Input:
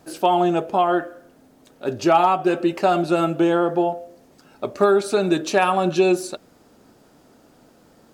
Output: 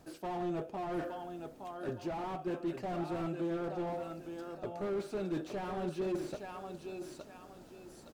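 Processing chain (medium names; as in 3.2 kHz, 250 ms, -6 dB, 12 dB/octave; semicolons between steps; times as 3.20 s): bass shelf 87 Hz +9 dB; reverse; compression 6:1, threshold -28 dBFS, peak gain reduction 15.5 dB; reverse; feedback delay 865 ms, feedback 31%, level -9.5 dB; slew-rate limiter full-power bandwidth 19 Hz; trim -5 dB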